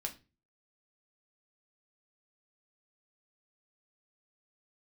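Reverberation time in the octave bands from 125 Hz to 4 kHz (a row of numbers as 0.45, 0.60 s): 0.55, 0.45, 0.35, 0.25, 0.30, 0.25 s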